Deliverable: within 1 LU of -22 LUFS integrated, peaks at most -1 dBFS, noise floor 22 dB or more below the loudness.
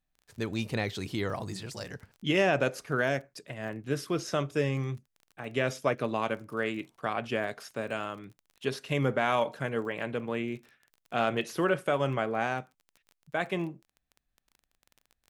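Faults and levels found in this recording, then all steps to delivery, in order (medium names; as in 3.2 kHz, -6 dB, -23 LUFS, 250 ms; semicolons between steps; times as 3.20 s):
tick rate 23 per s; loudness -31.5 LUFS; peak level -12.0 dBFS; loudness target -22.0 LUFS
-> de-click; trim +9.5 dB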